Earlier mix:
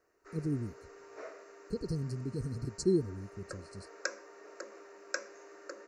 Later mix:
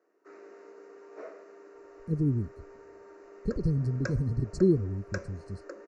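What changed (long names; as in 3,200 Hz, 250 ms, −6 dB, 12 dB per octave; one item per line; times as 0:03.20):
speech: entry +1.75 s
master: add spectral tilt −3 dB per octave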